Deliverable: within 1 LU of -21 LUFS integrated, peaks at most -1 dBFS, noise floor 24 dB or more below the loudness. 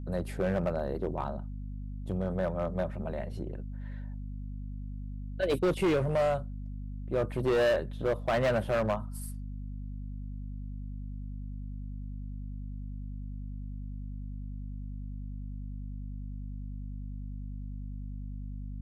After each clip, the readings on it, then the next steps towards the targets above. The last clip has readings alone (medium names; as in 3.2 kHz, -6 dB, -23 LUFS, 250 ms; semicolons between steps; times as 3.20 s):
clipped samples 1.5%; clipping level -22.5 dBFS; hum 50 Hz; highest harmonic 250 Hz; hum level -36 dBFS; loudness -34.5 LUFS; peak level -22.5 dBFS; loudness target -21.0 LUFS
-> clip repair -22.5 dBFS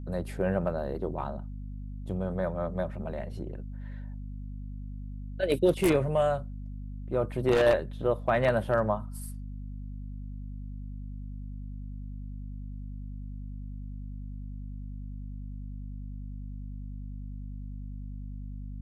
clipped samples 0.0%; hum 50 Hz; highest harmonic 250 Hz; hum level -36 dBFS
-> hum notches 50/100/150/200/250 Hz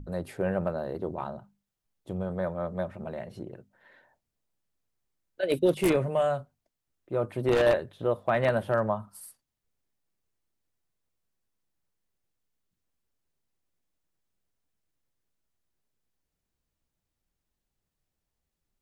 hum not found; loudness -29.0 LUFS; peak level -12.5 dBFS; loudness target -21.0 LUFS
-> trim +8 dB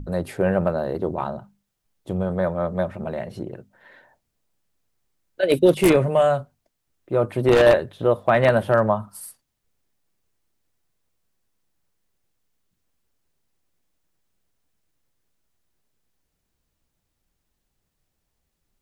loudness -21.0 LUFS; peak level -4.5 dBFS; noise floor -77 dBFS